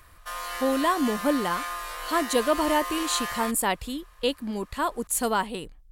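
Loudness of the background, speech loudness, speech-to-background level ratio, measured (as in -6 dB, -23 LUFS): -33.0 LUFS, -27.0 LUFS, 6.0 dB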